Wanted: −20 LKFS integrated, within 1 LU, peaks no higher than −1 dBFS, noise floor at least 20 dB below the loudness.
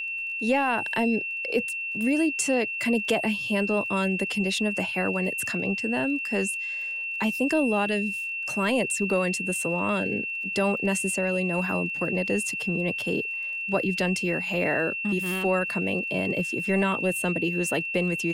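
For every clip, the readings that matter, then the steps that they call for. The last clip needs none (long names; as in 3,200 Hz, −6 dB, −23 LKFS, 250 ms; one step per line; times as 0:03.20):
crackle rate 34 per second; interfering tone 2,700 Hz; level of the tone −29 dBFS; integrated loudness −25.5 LKFS; sample peak −12.0 dBFS; target loudness −20.0 LKFS
→ click removal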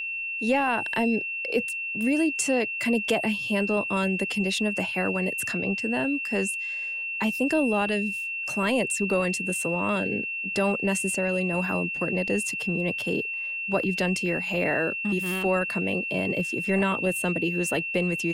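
crackle rate 0 per second; interfering tone 2,700 Hz; level of the tone −29 dBFS
→ notch filter 2,700 Hz, Q 30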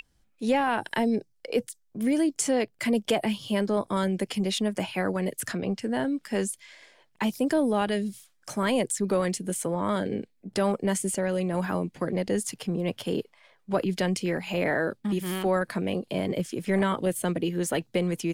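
interfering tone none found; integrated loudness −28.0 LKFS; sample peak −13.5 dBFS; target loudness −20.0 LKFS
→ level +8 dB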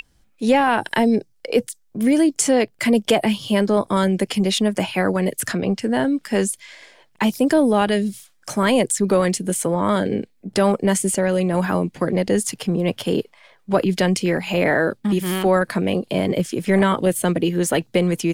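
integrated loudness −20.0 LKFS; sample peak −5.5 dBFS; background noise floor −59 dBFS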